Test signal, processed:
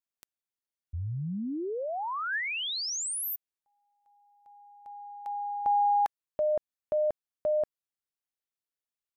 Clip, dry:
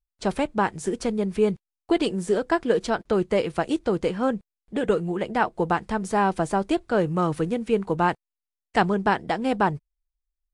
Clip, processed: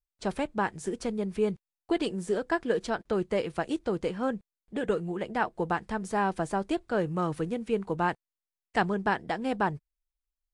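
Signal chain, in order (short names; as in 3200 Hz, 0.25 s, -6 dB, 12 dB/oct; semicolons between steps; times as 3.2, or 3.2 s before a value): dynamic EQ 1700 Hz, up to +4 dB, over -44 dBFS, Q 7; gain -6 dB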